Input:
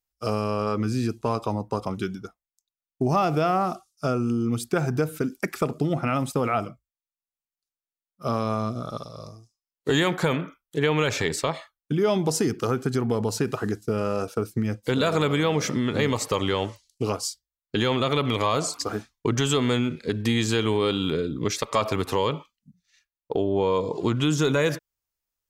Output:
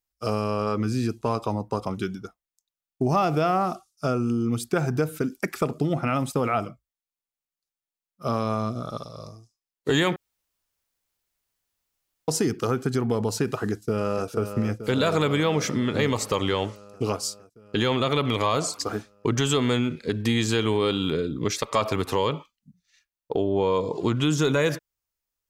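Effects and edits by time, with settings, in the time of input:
10.16–12.28 room tone
13.71–14.27 echo throw 0.46 s, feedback 75%, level -9 dB

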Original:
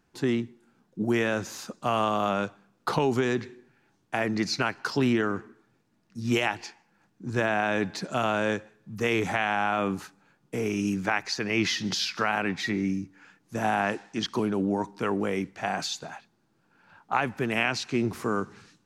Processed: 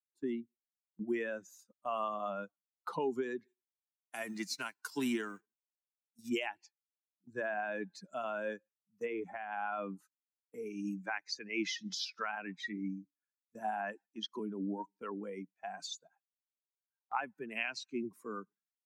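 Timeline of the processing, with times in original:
3.47–6.28 spectral whitening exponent 0.6
9.05–9.52 high shelf 2800 Hz -10.5 dB
whole clip: per-bin expansion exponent 2; HPF 200 Hz 24 dB/oct; gate -51 dBFS, range -10 dB; gain -6 dB

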